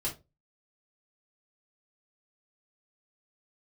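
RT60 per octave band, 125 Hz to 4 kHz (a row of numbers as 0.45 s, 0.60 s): 0.35 s, 0.30 s, 0.30 s, 0.20 s, 0.20 s, 0.20 s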